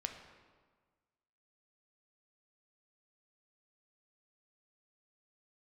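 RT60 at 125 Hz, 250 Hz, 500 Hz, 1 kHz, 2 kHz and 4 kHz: 1.6 s, 1.6 s, 1.5 s, 1.5 s, 1.2 s, 1.0 s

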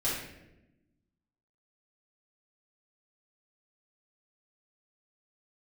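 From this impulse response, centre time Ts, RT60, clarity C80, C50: 61 ms, 0.95 s, 4.5 dB, 0.5 dB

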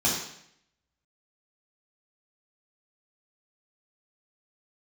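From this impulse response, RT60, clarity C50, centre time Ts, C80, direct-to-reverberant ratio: 0.70 s, 2.5 dB, 49 ms, 5.5 dB, -6.0 dB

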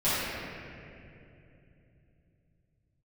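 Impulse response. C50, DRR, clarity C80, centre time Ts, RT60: -5.5 dB, -15.0 dB, -3.0 dB, 185 ms, 2.8 s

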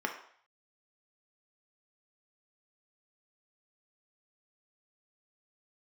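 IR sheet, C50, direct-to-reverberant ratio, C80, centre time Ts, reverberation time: 8.0 dB, 2.0 dB, 11.5 dB, 19 ms, 0.55 s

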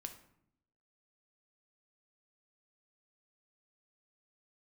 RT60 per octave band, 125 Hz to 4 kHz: 1.0 s, 1.0 s, 0.75 s, 0.65 s, 0.60 s, 0.45 s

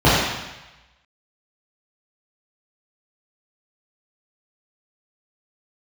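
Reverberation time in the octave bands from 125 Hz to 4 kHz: 1.1 s, 0.90 s, 0.95 s, 1.1 s, 1.1 s, 1.1 s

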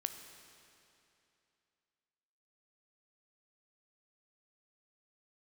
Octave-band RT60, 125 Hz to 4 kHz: 2.8 s, 2.8 s, 2.8 s, 2.8 s, 2.7 s, 2.6 s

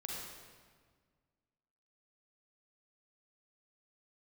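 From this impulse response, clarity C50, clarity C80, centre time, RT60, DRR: -2.0 dB, 0.5 dB, 102 ms, 1.7 s, -3.5 dB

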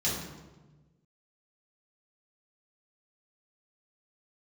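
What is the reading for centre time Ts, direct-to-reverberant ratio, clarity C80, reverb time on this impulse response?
64 ms, -8.0 dB, 4.5 dB, 1.2 s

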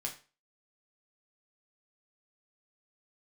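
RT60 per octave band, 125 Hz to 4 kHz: 0.35 s, 0.35 s, 0.35 s, 0.35 s, 0.35 s, 0.30 s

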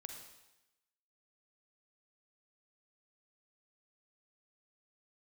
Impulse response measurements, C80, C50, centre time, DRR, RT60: 6.5 dB, 4.0 dB, 38 ms, 3.5 dB, 0.95 s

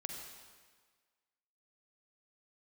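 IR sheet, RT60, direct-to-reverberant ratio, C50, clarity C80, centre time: 1.6 s, 2.0 dB, 3.0 dB, 4.0 dB, 59 ms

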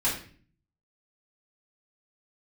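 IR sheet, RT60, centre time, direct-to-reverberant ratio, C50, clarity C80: 0.45 s, 33 ms, -9.0 dB, 5.5 dB, 10.0 dB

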